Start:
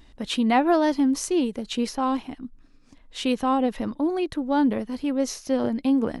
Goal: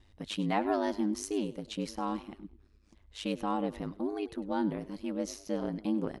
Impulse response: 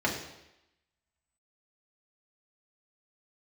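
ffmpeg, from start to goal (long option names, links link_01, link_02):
-filter_complex "[0:a]asplit=4[link_01][link_02][link_03][link_04];[link_02]adelay=100,afreqshift=38,volume=-18dB[link_05];[link_03]adelay=200,afreqshift=76,volume=-26.6dB[link_06];[link_04]adelay=300,afreqshift=114,volume=-35.3dB[link_07];[link_01][link_05][link_06][link_07]amix=inputs=4:normalize=0,aeval=exprs='val(0)*sin(2*PI*51*n/s)':channel_layout=same,volume=-7dB"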